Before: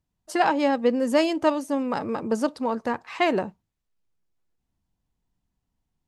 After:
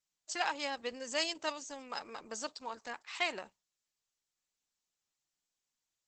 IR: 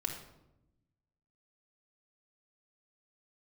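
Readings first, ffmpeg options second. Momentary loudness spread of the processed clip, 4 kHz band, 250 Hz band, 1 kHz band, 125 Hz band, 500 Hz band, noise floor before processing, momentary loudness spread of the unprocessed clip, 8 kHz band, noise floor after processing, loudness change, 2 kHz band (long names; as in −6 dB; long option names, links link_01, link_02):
10 LU, −2.5 dB, −24.0 dB, −14.0 dB, below −25 dB, −18.0 dB, −81 dBFS, 8 LU, −0.5 dB, below −85 dBFS, −13.5 dB, −7.5 dB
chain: -af "aderivative,volume=5dB" -ar 48000 -c:a libopus -b:a 12k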